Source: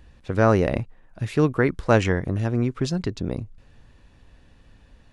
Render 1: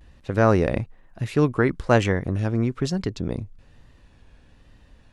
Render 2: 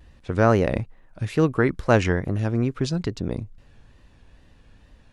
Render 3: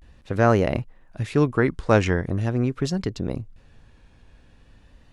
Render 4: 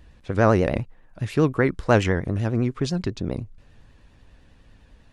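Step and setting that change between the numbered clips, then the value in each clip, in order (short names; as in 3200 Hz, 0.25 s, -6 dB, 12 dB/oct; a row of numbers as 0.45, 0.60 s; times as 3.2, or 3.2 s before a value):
vibrato, rate: 1.1, 2.3, 0.42, 10 Hz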